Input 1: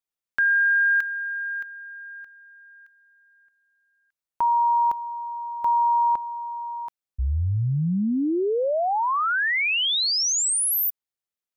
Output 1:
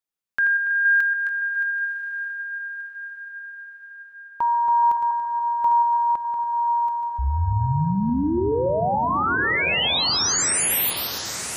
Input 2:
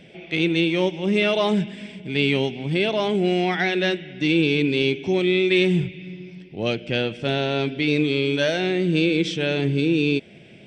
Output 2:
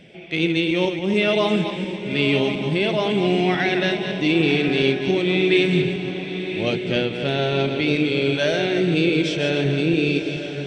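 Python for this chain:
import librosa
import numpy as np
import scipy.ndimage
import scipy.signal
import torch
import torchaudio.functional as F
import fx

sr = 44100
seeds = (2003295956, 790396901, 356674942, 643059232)

y = fx.reverse_delay_fb(x, sr, ms=142, feedback_pct=44, wet_db=-7.0)
y = fx.echo_diffused(y, sr, ms=1036, feedback_pct=50, wet_db=-9.5)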